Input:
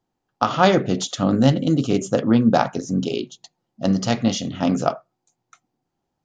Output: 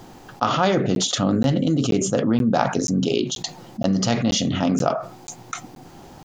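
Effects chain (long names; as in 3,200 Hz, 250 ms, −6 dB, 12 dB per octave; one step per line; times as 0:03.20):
regular buffer underruns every 0.48 s, samples 512, zero, from 0:00.95
envelope flattener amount 70%
level −5.5 dB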